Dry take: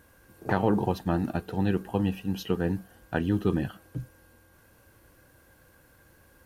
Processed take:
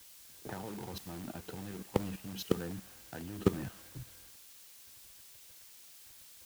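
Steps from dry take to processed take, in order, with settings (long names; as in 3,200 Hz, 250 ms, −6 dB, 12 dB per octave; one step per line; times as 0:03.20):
transient designer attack +6 dB, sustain +2 dB
in parallel at −8.5 dB: wrap-around overflow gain 20 dB
on the sum: output level in coarse steps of 18 dB
bit-depth reduction 8 bits, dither triangular
multiband upward and downward expander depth 40%
level −6.5 dB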